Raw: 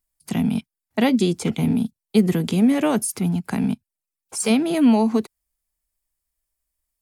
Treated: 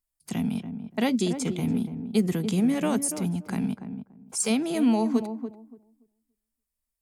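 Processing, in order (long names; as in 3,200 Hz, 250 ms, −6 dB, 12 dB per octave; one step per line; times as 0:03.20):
dynamic equaliser 7,100 Hz, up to +7 dB, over −45 dBFS, Q 1.2
on a send: feedback echo with a low-pass in the loop 287 ms, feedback 20%, low-pass 820 Hz, level −8 dB
on the sum: level −6.5 dB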